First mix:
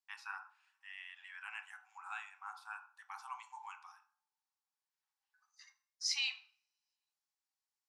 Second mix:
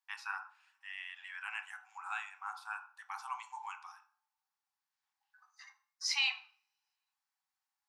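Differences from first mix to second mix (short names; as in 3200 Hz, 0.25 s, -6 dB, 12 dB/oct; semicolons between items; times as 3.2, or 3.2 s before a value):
first voice +5.0 dB; second voice: remove band-pass 6400 Hz, Q 0.73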